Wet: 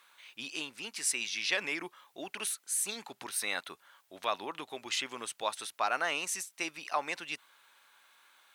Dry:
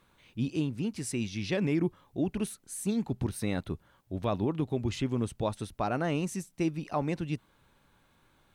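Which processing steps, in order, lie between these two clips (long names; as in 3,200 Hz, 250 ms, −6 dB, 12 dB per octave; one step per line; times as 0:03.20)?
high-pass filter 1,200 Hz 12 dB per octave
level +8 dB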